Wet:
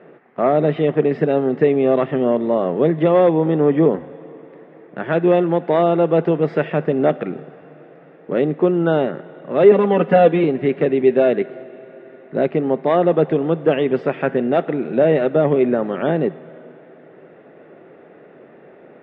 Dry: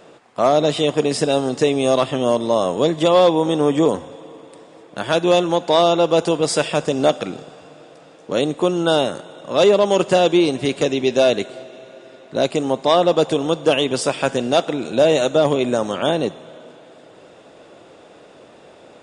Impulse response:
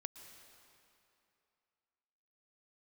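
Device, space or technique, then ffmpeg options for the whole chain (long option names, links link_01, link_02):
bass cabinet: -filter_complex "[0:a]asettb=1/sr,asplit=3[link_01][link_02][link_03];[link_01]atrim=end=9.714[link_04];[link_02]atrim=start=9.71:end=10.44,asetpts=PTS-STARTPTS,afade=type=in:duration=0.004:curve=qsin,afade=type=out:start_time=0.726:duration=0.004:curve=qsin,aecho=1:1:4.1:0.98,atrim=end_sample=32193[link_05];[link_03]atrim=start=10.436[link_06];[link_04][link_05]acrossfade=duration=0.004:curve1=hsin:curve2=qsin[link_07];[link_07][link_06]acrossfade=duration=0.004:curve1=qsin:curve2=hsin,highpass=89,equalizer=frequency=100:width_type=q:width=4:gain=-7,equalizer=frequency=160:width_type=q:width=4:gain=8,equalizer=frequency=240:width_type=q:width=4:gain=4,equalizer=frequency=390:width_type=q:width=4:gain=7,equalizer=frequency=1000:width_type=q:width=4:gain=-5,equalizer=frequency=1900:width_type=q:width=4:gain=6,lowpass=frequency=2200:width=0.5412,lowpass=frequency=2200:width=1.3066,volume=-1.5dB"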